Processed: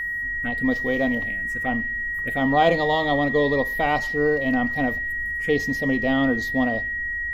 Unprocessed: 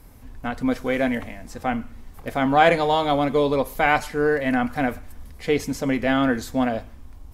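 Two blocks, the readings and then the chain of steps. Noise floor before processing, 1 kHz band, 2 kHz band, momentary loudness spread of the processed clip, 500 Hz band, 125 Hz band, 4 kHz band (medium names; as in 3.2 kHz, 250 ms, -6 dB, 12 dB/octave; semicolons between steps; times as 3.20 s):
-43 dBFS, -3.0 dB, +5.5 dB, 6 LU, -1.0 dB, 0.0 dB, -1.5 dB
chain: touch-sensitive phaser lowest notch 560 Hz, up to 1.8 kHz, full sweep at -21 dBFS; whistle 1.9 kHz -25 dBFS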